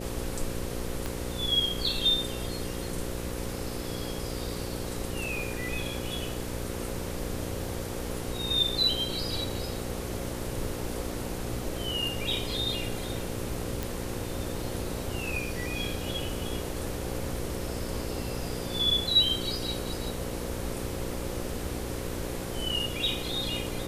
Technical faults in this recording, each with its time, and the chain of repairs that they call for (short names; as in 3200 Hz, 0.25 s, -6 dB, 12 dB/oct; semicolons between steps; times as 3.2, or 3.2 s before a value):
buzz 60 Hz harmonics 9 -37 dBFS
1.06 pop
13.83 pop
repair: de-click; de-hum 60 Hz, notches 9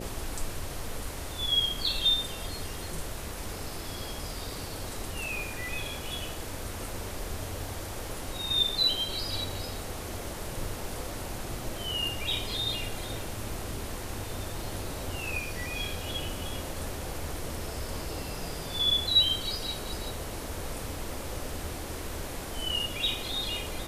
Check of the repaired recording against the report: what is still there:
1.06 pop